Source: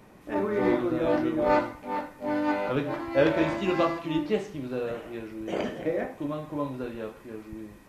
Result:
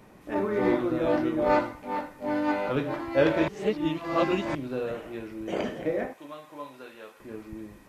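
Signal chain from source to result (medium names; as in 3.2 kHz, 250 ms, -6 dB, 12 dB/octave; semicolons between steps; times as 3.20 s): 3.48–4.55 s: reverse; 6.13–7.20 s: high-pass 1.4 kHz 6 dB/octave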